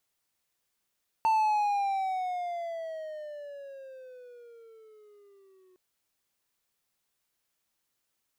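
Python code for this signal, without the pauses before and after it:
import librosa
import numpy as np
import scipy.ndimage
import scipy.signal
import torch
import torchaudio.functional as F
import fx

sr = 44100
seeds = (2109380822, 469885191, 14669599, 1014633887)

y = fx.riser_tone(sr, length_s=4.51, level_db=-19, wave='triangle', hz=895.0, rise_st=-15.5, swell_db=-37.5)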